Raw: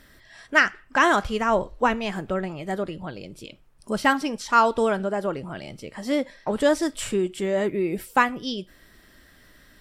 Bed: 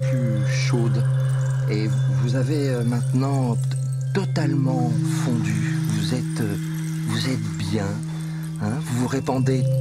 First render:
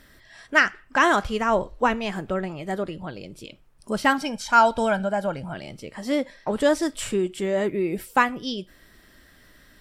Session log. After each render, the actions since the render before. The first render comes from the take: 4.18–5.54 s: comb 1.3 ms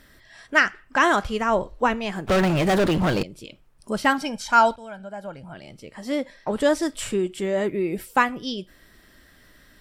2.27–3.23 s: waveshaping leveller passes 5; 4.76–6.52 s: fade in, from -20.5 dB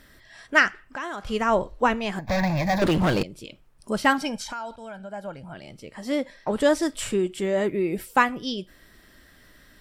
0.81–1.27 s: compression 2.5:1, threshold -36 dBFS; 2.19–2.82 s: static phaser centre 2 kHz, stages 8; 4.43–5.11 s: compression 5:1, threshold -32 dBFS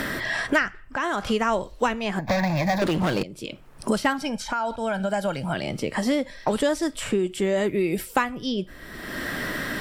three bands compressed up and down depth 100%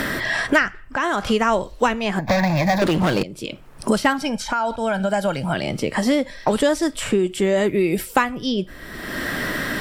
trim +4.5 dB

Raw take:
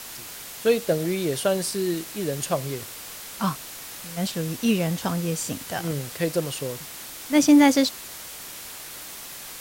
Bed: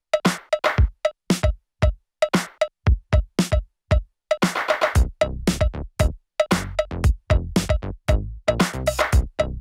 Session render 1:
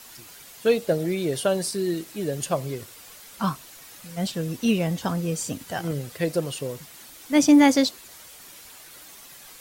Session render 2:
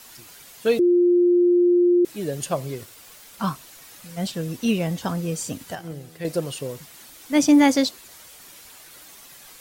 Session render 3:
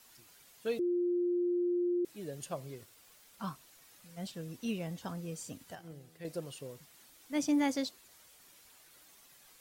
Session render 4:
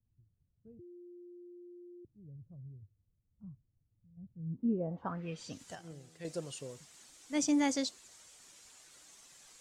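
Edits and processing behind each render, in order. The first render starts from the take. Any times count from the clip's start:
noise reduction 9 dB, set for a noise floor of -39 dBFS
0.79–2.05 s: bleep 352 Hz -13.5 dBFS; 2.72–3.52 s: small samples zeroed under -47 dBFS; 5.75–6.25 s: feedback comb 81 Hz, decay 1.8 s
trim -14.5 dB
low-pass sweep 100 Hz -> 7.4 kHz, 4.35–5.61 s

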